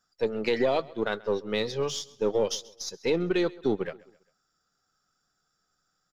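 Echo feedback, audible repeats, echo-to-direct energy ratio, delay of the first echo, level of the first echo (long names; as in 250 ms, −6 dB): 43%, 2, −21.0 dB, 133 ms, −22.0 dB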